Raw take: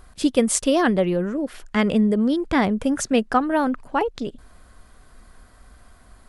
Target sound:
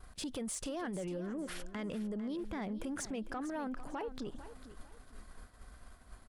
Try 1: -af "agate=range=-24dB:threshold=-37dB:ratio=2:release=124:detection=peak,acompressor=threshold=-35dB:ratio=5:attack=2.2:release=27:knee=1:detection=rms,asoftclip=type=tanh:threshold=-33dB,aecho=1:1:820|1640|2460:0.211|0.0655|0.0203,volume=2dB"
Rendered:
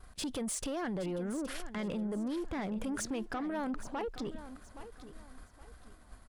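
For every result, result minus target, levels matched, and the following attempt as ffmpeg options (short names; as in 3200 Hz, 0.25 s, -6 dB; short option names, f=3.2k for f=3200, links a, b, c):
echo 0.37 s late; compressor: peak gain reduction -5 dB
-af "agate=range=-24dB:threshold=-37dB:ratio=2:release=124:detection=peak,acompressor=threshold=-35dB:ratio=5:attack=2.2:release=27:knee=1:detection=rms,asoftclip=type=tanh:threshold=-33dB,aecho=1:1:450|900|1350:0.211|0.0655|0.0203,volume=2dB"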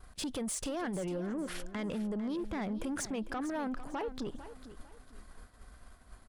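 compressor: peak gain reduction -5 dB
-af "agate=range=-24dB:threshold=-37dB:ratio=2:release=124:detection=peak,acompressor=threshold=-41dB:ratio=5:attack=2.2:release=27:knee=1:detection=rms,asoftclip=type=tanh:threshold=-33dB,aecho=1:1:450|900|1350:0.211|0.0655|0.0203,volume=2dB"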